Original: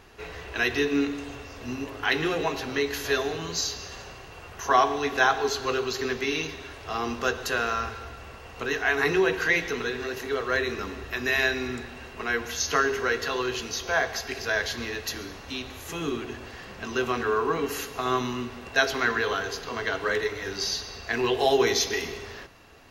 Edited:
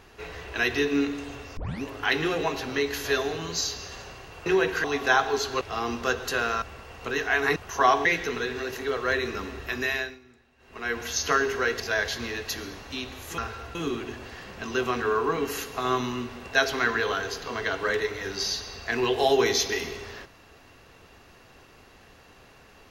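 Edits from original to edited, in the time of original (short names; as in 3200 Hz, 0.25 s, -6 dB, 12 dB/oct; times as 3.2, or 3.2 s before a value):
1.57 tape start 0.25 s
4.46–4.95 swap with 9.11–9.49
5.72–6.79 cut
7.8–8.17 move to 15.96
11.2–12.45 dip -22.5 dB, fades 0.43 s
13.24–14.38 cut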